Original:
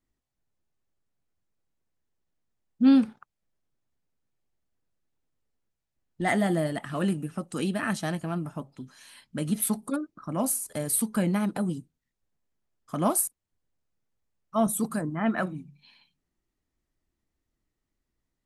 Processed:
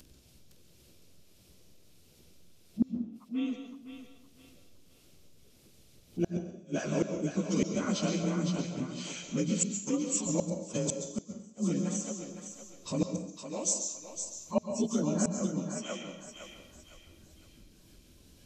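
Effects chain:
partials spread apart or drawn together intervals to 90%
noise reduction from a noise print of the clip's start 9 dB
in parallel at 0 dB: downward compressor 8 to 1, threshold −38 dBFS, peak gain reduction 21 dB
on the sum: flat-topped bell 1,200 Hz −10.5 dB
upward compression, threshold −34 dBFS
feedback echo with a high-pass in the loop 511 ms, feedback 39%, high-pass 510 Hz, level −5 dB
gate with flip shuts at −18 dBFS, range −34 dB
harmonic and percussive parts rebalanced percussive +5 dB
on a send at −7 dB: convolution reverb RT60 0.60 s, pre-delay 119 ms
on the sum: level −2.5 dB

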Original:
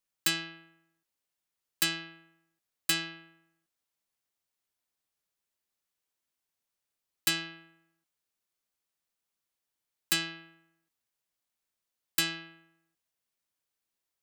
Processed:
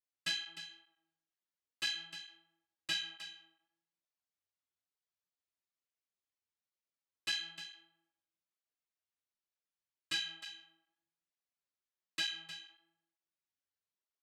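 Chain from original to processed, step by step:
low-pass filter 6,200 Hz 12 dB per octave
hum removal 82.5 Hz, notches 17
dynamic equaliser 2,600 Hz, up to +5 dB, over −44 dBFS, Q 1
tuned comb filter 92 Hz, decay 0.31 s, harmonics all, mix 90%
single-tap delay 306 ms −12 dB
through-zero flanger with one copy inverted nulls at 1.1 Hz, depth 6.8 ms
level +1.5 dB

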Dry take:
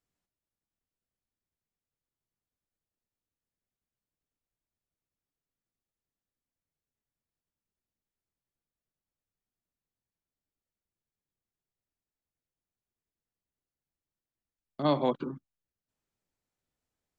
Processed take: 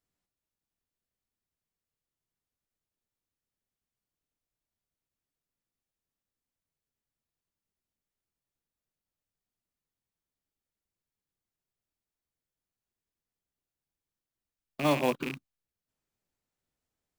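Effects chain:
loose part that buzzes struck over −38 dBFS, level −24 dBFS
floating-point word with a short mantissa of 2 bits

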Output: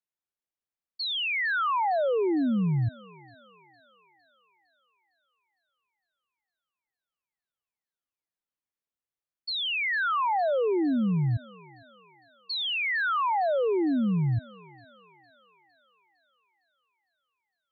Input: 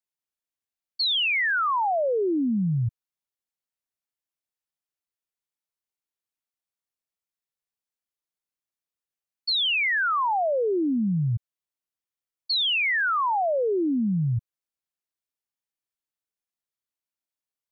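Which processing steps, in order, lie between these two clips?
high-shelf EQ 2,800 Hz −9 dB
feedback echo with a high-pass in the loop 457 ms, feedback 62%, high-pass 530 Hz, level −18 dB
level −1 dB

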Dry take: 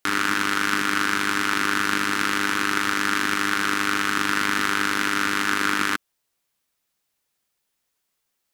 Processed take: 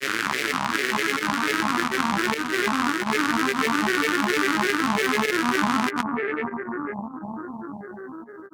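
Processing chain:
bucket-brigade delay 473 ms, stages 4,096, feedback 75%, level −3.5 dB
fake sidechain pumping 101 BPM, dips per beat 1, −13 dB, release 113 ms
granular cloud 100 ms, pitch spread up and down by 7 semitones
level −1.5 dB

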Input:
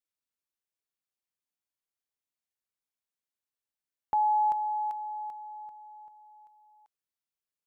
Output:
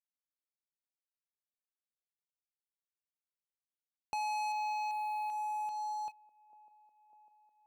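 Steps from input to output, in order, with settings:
noise gate −51 dBFS, range −12 dB
leveller curve on the samples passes 3
downward compressor 5 to 1, threshold −41 dBFS, peak gain reduction 15.5 dB
leveller curve on the samples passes 3
delay with a band-pass on its return 600 ms, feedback 73%, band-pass 430 Hz, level −17 dB
level −5.5 dB

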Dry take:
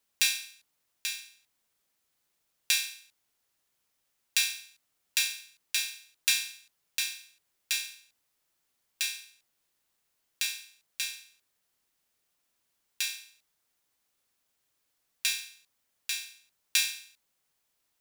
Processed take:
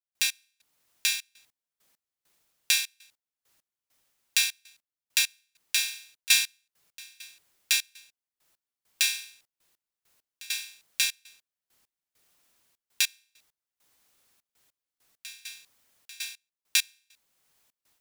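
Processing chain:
gate pattern ".x..xxxx.x." 100 BPM −24 dB
automatic gain control gain up to 10.5 dB
level −1 dB

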